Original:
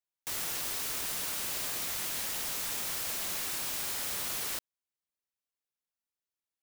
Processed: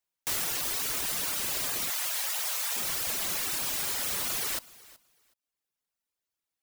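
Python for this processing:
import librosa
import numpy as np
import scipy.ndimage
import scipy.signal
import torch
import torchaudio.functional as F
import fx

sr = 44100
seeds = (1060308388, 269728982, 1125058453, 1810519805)

p1 = fx.dereverb_blind(x, sr, rt60_s=0.81)
p2 = fx.cheby2_highpass(p1, sr, hz=220.0, order=4, stop_db=50, at=(1.9, 2.76))
p3 = p2 + fx.echo_feedback(p2, sr, ms=374, feedback_pct=17, wet_db=-21.5, dry=0)
y = F.gain(torch.from_numpy(p3), 6.0).numpy()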